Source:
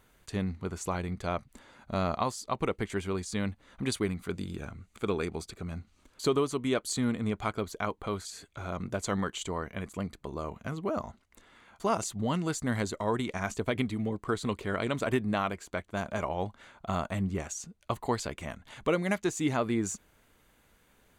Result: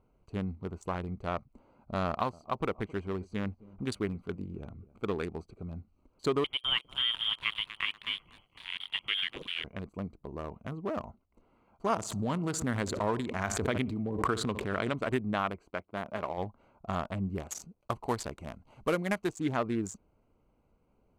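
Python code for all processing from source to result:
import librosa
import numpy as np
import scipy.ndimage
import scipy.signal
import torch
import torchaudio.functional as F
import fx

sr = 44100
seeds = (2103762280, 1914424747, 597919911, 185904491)

y = fx.chain(x, sr, fx.block_float(bits=7),
    fx.high_shelf(hz=6600.0, db=-3.5),
    fx.echo_filtered(ms=267, feedback_pct=32, hz=1800.0, wet_db=-19.5), at=(2.06, 5.2))
y = fx.chain(y, sr, fx.freq_invert(carrier_hz=3400),
    fx.echo_crushed(ms=241, feedback_pct=55, bits=9, wet_db=-10.5), at=(6.44, 9.64))
y = fx.chain(y, sr, fx.highpass(hz=40.0, slope=12),
    fx.echo_feedback(ms=61, feedback_pct=44, wet_db=-18.0),
    fx.pre_swell(db_per_s=30.0), at=(11.9, 14.93))
y = fx.chain(y, sr, fx.highpass(hz=180.0, slope=6),
    fx.peak_eq(hz=6700.0, db=-14.5, octaves=0.43), at=(15.7, 16.38))
y = fx.chain(y, sr, fx.cvsd(bps=64000),
    fx.high_shelf(hz=4100.0, db=5.0), at=(17.32, 19.31))
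y = fx.wiener(y, sr, points=25)
y = fx.dynamic_eq(y, sr, hz=1500.0, q=0.78, threshold_db=-46.0, ratio=4.0, max_db=4)
y = y * librosa.db_to_amplitude(-2.5)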